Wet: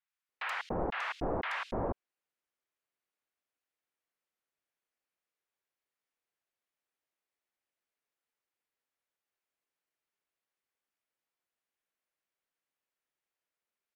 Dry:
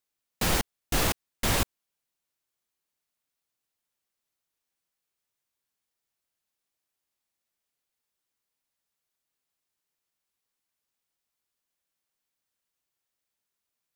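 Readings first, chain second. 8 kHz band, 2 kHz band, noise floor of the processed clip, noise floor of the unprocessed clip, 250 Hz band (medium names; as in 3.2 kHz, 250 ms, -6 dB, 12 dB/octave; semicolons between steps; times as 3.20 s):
-29.0 dB, -3.5 dB, under -85 dBFS, under -85 dBFS, -5.5 dB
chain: low-pass that closes with the level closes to 2.4 kHz, closed at -28.5 dBFS; tone controls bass -11 dB, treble -13 dB; three bands offset in time mids, highs, lows 80/290 ms, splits 960/3800 Hz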